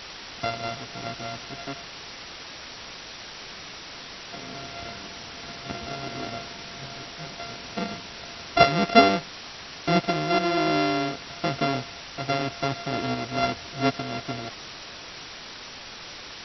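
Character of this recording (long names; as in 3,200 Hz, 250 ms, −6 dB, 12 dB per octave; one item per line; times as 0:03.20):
a buzz of ramps at a fixed pitch in blocks of 64 samples
sample-and-hold tremolo
a quantiser's noise floor 6 bits, dither triangular
MP2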